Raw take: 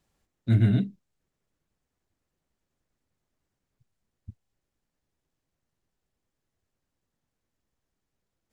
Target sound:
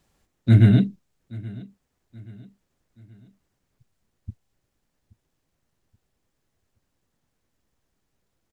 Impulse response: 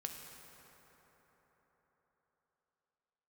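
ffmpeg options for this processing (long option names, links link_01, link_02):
-af "aecho=1:1:827|1654|2481:0.0891|0.0374|0.0157,volume=7dB"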